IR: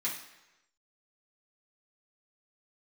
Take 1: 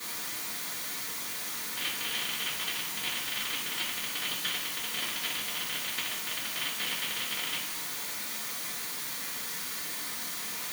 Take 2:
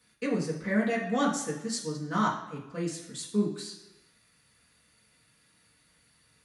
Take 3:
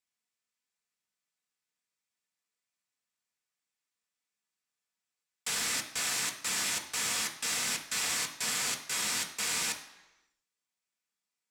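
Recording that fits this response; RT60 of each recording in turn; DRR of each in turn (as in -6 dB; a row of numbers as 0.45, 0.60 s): 2; 1.0, 1.0, 1.0 s; -16.0, -7.5, 2.0 dB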